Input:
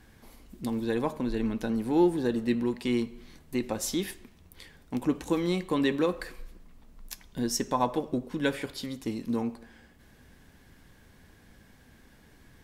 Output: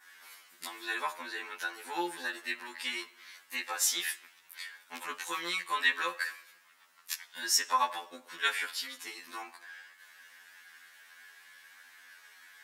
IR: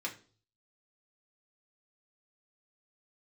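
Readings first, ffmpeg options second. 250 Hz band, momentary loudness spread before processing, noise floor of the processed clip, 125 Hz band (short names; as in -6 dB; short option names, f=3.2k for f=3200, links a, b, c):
-21.5 dB, 12 LU, -62 dBFS, under -30 dB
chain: -af "adynamicequalizer=threshold=0.00282:dfrequency=3100:dqfactor=0.75:tfrequency=3100:tqfactor=0.75:attack=5:release=100:ratio=0.375:range=1.5:mode=cutabove:tftype=bell,highpass=f=1.5k:t=q:w=1.6,afftfilt=real='re*2*eq(mod(b,4),0)':imag='im*2*eq(mod(b,4),0)':win_size=2048:overlap=0.75,volume=7.5dB"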